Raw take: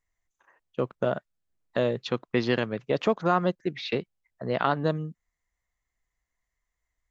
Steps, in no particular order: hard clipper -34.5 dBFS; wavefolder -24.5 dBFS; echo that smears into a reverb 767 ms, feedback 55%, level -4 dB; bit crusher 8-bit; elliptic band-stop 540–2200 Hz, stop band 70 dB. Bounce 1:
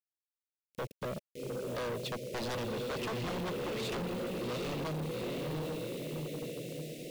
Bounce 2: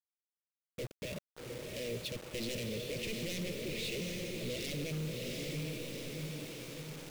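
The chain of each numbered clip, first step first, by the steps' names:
echo that smears into a reverb > bit crusher > elliptic band-stop > wavefolder > hard clipper; wavefolder > echo that smears into a reverb > hard clipper > elliptic band-stop > bit crusher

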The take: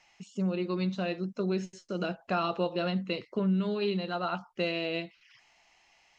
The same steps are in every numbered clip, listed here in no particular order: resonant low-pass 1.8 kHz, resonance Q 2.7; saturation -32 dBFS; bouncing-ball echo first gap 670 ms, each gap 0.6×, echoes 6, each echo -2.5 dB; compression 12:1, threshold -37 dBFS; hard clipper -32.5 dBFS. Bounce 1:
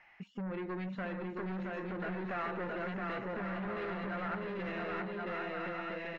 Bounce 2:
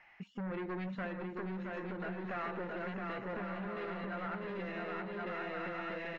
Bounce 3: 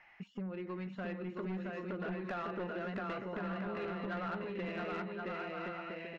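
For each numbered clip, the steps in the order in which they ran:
saturation > bouncing-ball echo > hard clipper > compression > resonant low-pass; hard clipper > bouncing-ball echo > compression > saturation > resonant low-pass; compression > bouncing-ball echo > hard clipper > resonant low-pass > saturation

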